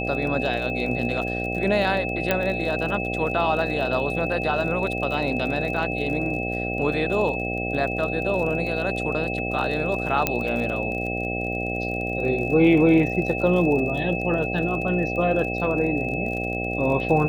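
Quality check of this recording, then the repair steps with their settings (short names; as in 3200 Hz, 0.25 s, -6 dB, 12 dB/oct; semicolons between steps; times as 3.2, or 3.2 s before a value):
buzz 60 Hz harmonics 13 -29 dBFS
crackle 40/s -31 dBFS
tone 2600 Hz -29 dBFS
2.31 pop -7 dBFS
10.27 pop -5 dBFS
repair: de-click; notch 2600 Hz, Q 30; de-hum 60 Hz, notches 13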